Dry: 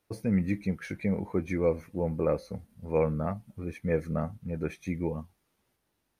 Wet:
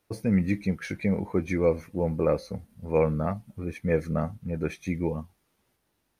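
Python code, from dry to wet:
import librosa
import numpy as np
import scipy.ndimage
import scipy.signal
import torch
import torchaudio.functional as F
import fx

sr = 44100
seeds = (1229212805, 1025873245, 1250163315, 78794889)

y = fx.dynamic_eq(x, sr, hz=4600.0, q=0.82, threshold_db=-51.0, ratio=4.0, max_db=4)
y = y * 10.0 ** (3.0 / 20.0)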